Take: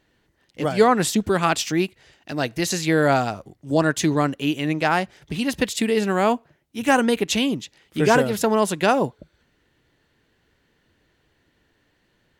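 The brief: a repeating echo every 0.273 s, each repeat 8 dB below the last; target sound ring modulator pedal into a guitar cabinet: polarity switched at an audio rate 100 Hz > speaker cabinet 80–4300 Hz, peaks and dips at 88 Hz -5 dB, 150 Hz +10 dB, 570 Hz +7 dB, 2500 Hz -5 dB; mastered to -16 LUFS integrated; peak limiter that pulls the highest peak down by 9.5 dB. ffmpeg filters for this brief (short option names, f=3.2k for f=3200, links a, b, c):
-af "alimiter=limit=-13.5dB:level=0:latency=1,aecho=1:1:273|546|819|1092|1365:0.398|0.159|0.0637|0.0255|0.0102,aeval=exprs='val(0)*sgn(sin(2*PI*100*n/s))':c=same,highpass=80,equalizer=f=88:t=q:w=4:g=-5,equalizer=f=150:t=q:w=4:g=10,equalizer=f=570:t=q:w=4:g=7,equalizer=f=2.5k:t=q:w=4:g=-5,lowpass=f=4.3k:w=0.5412,lowpass=f=4.3k:w=1.3066,volume=6.5dB"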